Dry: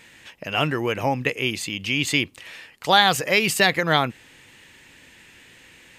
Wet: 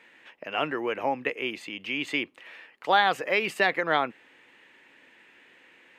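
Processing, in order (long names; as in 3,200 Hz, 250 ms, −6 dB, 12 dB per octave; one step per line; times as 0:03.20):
three-way crossover with the lows and the highs turned down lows −23 dB, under 240 Hz, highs −17 dB, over 2,900 Hz
level −3.5 dB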